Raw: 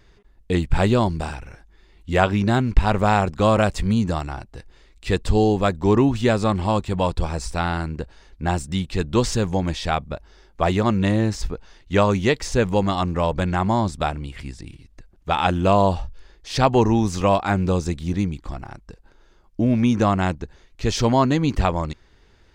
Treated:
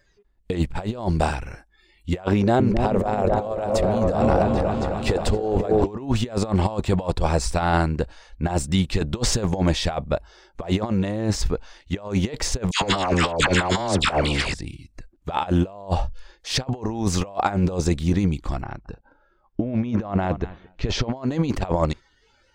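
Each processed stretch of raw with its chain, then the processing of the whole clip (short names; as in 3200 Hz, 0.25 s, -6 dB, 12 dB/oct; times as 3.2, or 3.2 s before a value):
2.33–5.87 bell 500 Hz +7.5 dB 1.2 oct + compressor 5:1, threshold -21 dBFS + repeats that get brighter 0.265 s, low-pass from 750 Hz, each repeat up 1 oct, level -3 dB
12.71–14.54 air absorption 63 m + dispersion lows, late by 0.102 s, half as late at 1100 Hz + spectral compressor 2:1
18.62–21.17 air absorption 160 m + feedback echo 0.221 s, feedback 17%, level -23 dB
whole clip: spectral noise reduction 16 dB; dynamic EQ 610 Hz, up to +8 dB, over -33 dBFS, Q 1.1; negative-ratio compressor -21 dBFS, ratio -0.5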